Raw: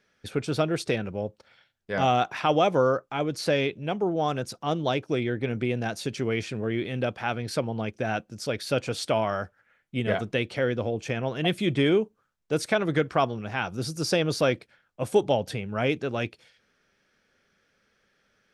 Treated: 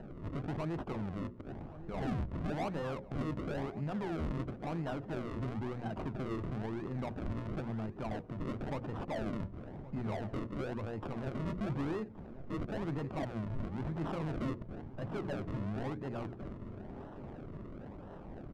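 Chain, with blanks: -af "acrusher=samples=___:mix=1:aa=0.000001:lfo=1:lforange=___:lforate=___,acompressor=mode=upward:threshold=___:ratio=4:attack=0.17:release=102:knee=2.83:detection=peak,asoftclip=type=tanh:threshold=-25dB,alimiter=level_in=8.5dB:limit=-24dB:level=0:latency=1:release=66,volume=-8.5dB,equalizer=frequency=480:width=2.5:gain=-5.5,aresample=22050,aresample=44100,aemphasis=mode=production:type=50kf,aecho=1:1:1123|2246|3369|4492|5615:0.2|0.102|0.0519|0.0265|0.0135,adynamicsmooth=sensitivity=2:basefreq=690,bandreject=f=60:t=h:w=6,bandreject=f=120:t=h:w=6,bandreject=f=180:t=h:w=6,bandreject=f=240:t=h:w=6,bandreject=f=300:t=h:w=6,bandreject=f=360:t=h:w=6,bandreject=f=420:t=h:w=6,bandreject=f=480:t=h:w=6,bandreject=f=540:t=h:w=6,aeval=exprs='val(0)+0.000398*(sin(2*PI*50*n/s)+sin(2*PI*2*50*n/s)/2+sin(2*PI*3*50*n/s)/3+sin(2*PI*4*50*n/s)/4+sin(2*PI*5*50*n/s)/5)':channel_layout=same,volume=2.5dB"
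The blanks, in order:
38, 38, 0.98, -33dB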